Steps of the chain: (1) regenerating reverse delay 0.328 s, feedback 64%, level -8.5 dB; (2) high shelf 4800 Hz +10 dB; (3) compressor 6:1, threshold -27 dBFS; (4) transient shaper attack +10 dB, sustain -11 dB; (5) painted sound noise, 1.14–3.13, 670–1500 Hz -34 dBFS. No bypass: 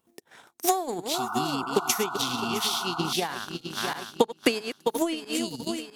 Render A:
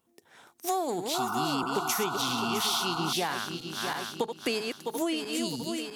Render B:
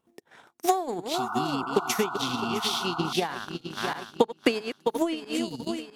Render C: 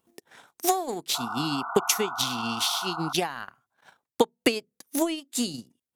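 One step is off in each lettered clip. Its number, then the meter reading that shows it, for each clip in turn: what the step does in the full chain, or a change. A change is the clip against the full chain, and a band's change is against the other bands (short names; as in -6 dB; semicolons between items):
4, crest factor change -7.5 dB; 2, 8 kHz band -6.0 dB; 1, 8 kHz band +1.5 dB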